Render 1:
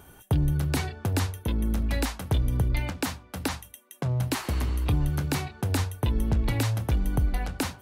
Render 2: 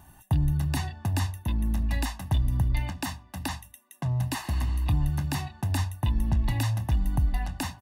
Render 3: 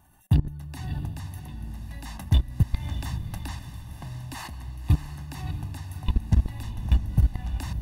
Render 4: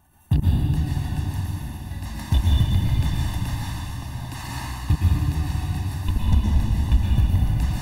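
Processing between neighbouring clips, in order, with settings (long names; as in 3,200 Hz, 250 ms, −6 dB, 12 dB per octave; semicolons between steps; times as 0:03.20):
comb filter 1.1 ms, depth 90%; level −5 dB
output level in coarse steps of 22 dB; feedback delay with all-pass diffusion 621 ms, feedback 42%, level −8.5 dB; level +6.5 dB
dense smooth reverb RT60 2.6 s, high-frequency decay 1×, pre-delay 100 ms, DRR −5.5 dB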